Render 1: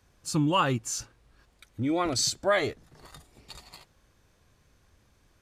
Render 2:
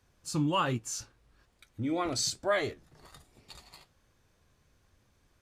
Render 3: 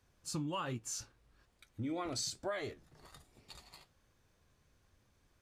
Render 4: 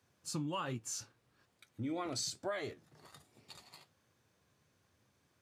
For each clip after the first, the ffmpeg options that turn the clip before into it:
-af "flanger=delay=7.8:depth=6.6:regen=-65:speed=1.2:shape=sinusoidal"
-af "acompressor=threshold=-31dB:ratio=10,volume=-3.5dB"
-af "highpass=f=96:w=0.5412,highpass=f=96:w=1.3066"

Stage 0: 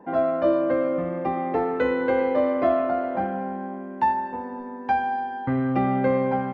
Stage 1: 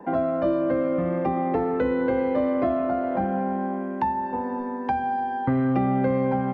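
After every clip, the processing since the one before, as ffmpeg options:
-filter_complex "[0:a]acrossover=split=270|1100[a][b][c];[a]acompressor=threshold=-29dB:ratio=4[d];[b]acompressor=threshold=-31dB:ratio=4[e];[c]acompressor=threshold=-46dB:ratio=4[f];[d][e][f]amix=inputs=3:normalize=0,volume=5.5dB"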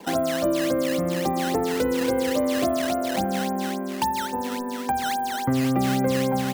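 -af "acrusher=samples=11:mix=1:aa=0.000001:lfo=1:lforange=17.6:lforate=3.6"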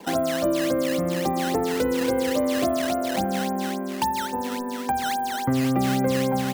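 -af anull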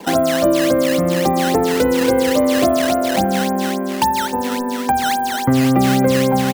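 -filter_complex "[0:a]asplit=2[a][b];[b]adelay=260,highpass=300,lowpass=3.4k,asoftclip=type=hard:threshold=-20.5dB,volume=-16dB[c];[a][c]amix=inputs=2:normalize=0,volume=8dB"

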